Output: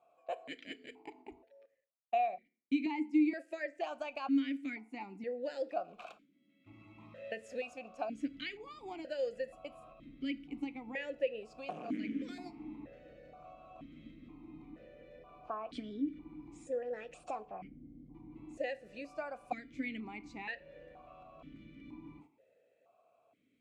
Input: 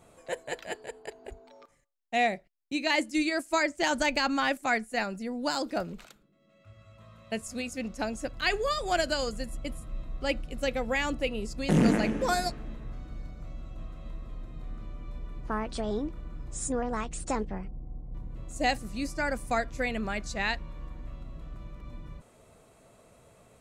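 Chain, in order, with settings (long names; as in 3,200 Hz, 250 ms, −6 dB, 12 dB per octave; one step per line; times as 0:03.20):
0:05.99–0:07.74: mu-law and A-law mismatch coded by mu
noise gate −50 dBFS, range −12 dB
downward compressor 6 to 1, threshold −35 dBFS, peak gain reduction 16 dB
feedback delay network reverb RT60 0.48 s, low-frequency decay 1×, high-frequency decay 0.8×, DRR 14 dB
formant filter that steps through the vowels 2.1 Hz
level +9 dB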